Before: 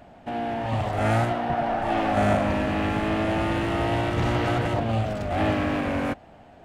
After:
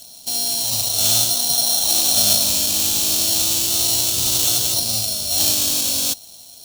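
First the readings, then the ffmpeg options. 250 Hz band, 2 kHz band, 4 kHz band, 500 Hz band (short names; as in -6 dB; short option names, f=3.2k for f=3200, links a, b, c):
-8.5 dB, -5.0 dB, +21.0 dB, -8.5 dB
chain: -af "acrusher=samples=9:mix=1:aa=0.000001,aexciter=amount=10:drive=9.9:freq=3.1k,volume=-8.5dB"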